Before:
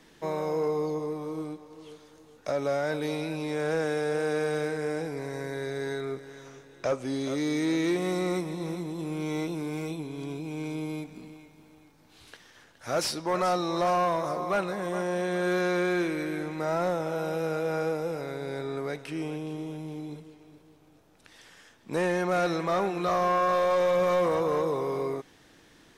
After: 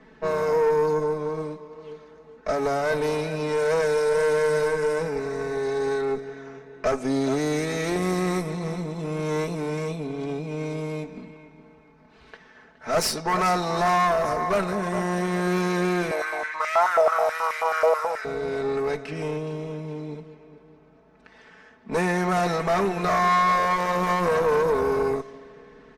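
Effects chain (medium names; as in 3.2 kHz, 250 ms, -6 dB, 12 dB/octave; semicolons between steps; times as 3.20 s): level-controlled noise filter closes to 2.4 kHz, open at -25 dBFS; comb 4.6 ms, depth 83%; reverberation RT60 3.0 s, pre-delay 26 ms, DRR 19.5 dB; valve stage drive 24 dB, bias 0.7; peaking EQ 3.3 kHz -6.5 dB 0.63 oct; 16.11–18.25 s: step-sequenced high-pass 9.3 Hz 630–2000 Hz; trim +8 dB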